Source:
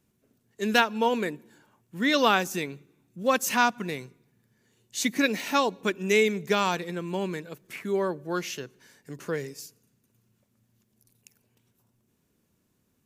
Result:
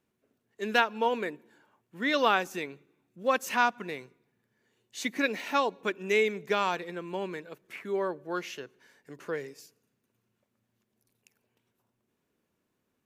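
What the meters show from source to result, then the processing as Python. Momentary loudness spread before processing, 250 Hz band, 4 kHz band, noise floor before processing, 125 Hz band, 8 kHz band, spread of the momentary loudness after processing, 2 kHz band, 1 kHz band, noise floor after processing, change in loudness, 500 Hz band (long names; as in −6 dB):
17 LU, −7.0 dB, −5.5 dB, −72 dBFS, −9.5 dB, −10.0 dB, 16 LU, −2.5 dB, −2.0 dB, −80 dBFS, −3.0 dB, −3.0 dB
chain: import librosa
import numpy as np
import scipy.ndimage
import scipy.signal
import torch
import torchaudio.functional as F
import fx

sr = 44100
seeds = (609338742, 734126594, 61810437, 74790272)

y = fx.bass_treble(x, sr, bass_db=-10, treble_db=-9)
y = F.gain(torch.from_numpy(y), -2.0).numpy()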